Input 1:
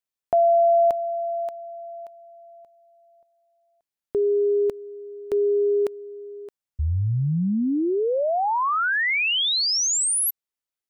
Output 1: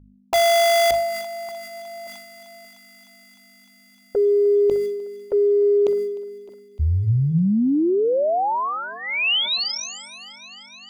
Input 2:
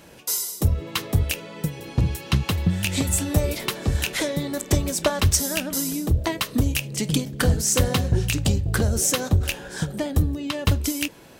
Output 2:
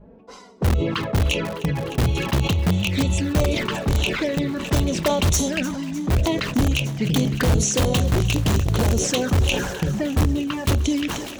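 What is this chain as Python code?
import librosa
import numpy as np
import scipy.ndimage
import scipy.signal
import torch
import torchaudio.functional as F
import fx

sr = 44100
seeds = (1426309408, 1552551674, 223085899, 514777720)

p1 = scipy.signal.sosfilt(scipy.signal.butter(2, 7900.0, 'lowpass', fs=sr, output='sos'), x)
p2 = fx.env_lowpass(p1, sr, base_hz=540.0, full_db=-16.0)
p3 = fx.env_flanger(p2, sr, rest_ms=5.1, full_db=-20.5)
p4 = fx.add_hum(p3, sr, base_hz=50, snr_db=27)
p5 = (np.mod(10.0 ** (16.0 / 20.0) * p4 + 1.0, 2.0) - 1.0) / 10.0 ** (16.0 / 20.0)
p6 = p4 + F.gain(torch.from_numpy(p5), -4.0).numpy()
p7 = fx.hum_notches(p6, sr, base_hz=50, count=3)
p8 = p7 + fx.echo_thinned(p7, sr, ms=304, feedback_pct=84, hz=490.0, wet_db=-19, dry=0)
y = fx.sustainer(p8, sr, db_per_s=41.0)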